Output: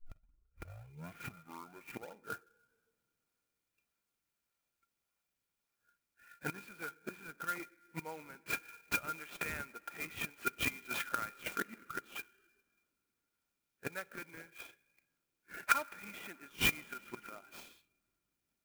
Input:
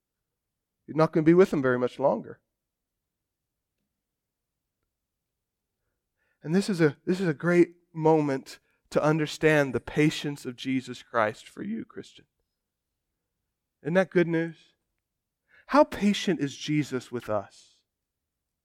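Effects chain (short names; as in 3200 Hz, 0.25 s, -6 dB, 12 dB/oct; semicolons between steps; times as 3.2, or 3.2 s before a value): tape start at the beginning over 2.36 s; resonant high shelf 3200 Hz -13.5 dB, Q 1.5; flipped gate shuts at -25 dBFS, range -25 dB; pre-emphasis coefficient 0.97; in parallel at -4 dB: decimation with a swept rate 39×, swing 160% 1.7 Hz; on the sum: small resonant body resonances 1400/2400 Hz, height 16 dB, ringing for 50 ms; on a send at -21 dB: reverb RT60 3.6 s, pre-delay 5 ms; on the sum: spectral noise reduction 12 dB; clock jitter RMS 0.03 ms; gain +16.5 dB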